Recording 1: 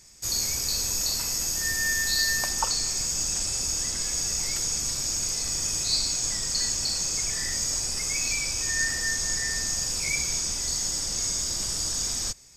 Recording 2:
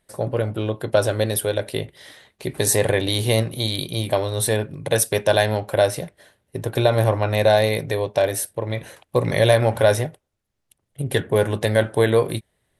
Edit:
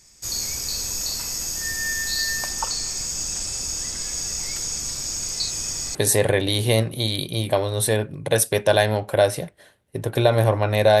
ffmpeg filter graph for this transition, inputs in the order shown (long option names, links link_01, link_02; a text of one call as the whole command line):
ffmpeg -i cue0.wav -i cue1.wav -filter_complex "[0:a]apad=whole_dur=11,atrim=end=11,asplit=2[link_01][link_02];[link_01]atrim=end=5.402[link_03];[link_02]atrim=start=5.398:end=5.952,asetpts=PTS-STARTPTS,areverse[link_04];[1:a]atrim=start=2.548:end=7.6[link_05];[link_03][link_04]acrossfade=duration=0.004:curve1=hsin:curve2=hsin[link_06];[link_06][link_05]acrossfade=duration=0.004:curve1=hsin:curve2=hsin" out.wav